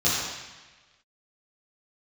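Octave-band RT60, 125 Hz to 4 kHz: 1.3 s, 1.2 s, 1.2 s, 1.3 s, 1.4 s, 1.3 s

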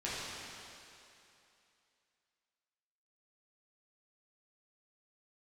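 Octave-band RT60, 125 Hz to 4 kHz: 2.4 s, 2.5 s, 2.7 s, 2.8 s, 2.8 s, 2.7 s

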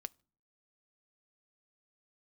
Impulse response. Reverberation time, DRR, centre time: no single decay rate, 15.5 dB, 1 ms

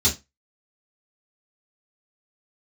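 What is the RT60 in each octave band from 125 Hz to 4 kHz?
0.25 s, 0.25 s, 0.20 s, 0.20 s, 0.20 s, 0.20 s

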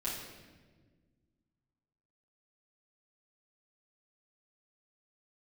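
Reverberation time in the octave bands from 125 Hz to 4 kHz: 2.4 s, 2.3 s, 1.7 s, 1.2 s, 1.2 s, 1.1 s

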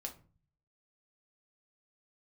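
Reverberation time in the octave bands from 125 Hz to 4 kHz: 0.75 s, 0.60 s, 0.40 s, 0.35 s, 0.30 s, 0.20 s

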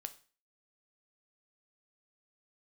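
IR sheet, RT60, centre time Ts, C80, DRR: 0.40 s, 4 ms, 21.0 dB, 9.0 dB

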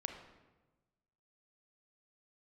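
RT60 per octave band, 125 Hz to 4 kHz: 1.5 s, 1.4 s, 1.3 s, 1.1 s, 0.95 s, 0.80 s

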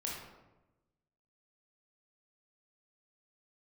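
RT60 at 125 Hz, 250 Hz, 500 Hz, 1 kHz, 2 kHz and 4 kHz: 1.4 s, 1.3 s, 1.1 s, 0.95 s, 0.80 s, 0.60 s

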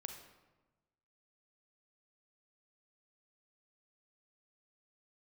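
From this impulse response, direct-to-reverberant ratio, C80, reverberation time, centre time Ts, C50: 4.5 dB, 8.0 dB, 1.2 s, 27 ms, 6.0 dB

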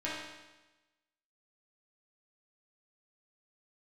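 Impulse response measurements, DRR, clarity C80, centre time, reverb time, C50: -9.5 dB, 3.0 dB, 76 ms, 1.1 s, -0.5 dB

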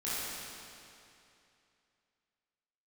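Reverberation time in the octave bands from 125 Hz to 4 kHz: 2.7 s, 2.6 s, 2.7 s, 2.7 s, 2.6 s, 2.5 s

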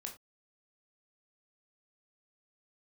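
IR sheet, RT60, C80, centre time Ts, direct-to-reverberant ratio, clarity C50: no single decay rate, 16.5 dB, 16 ms, 1.5 dB, 10.5 dB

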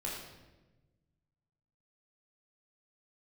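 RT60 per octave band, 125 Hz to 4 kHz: 2.1 s, 1.7 s, 1.3 s, 1.0 s, 0.95 s, 0.85 s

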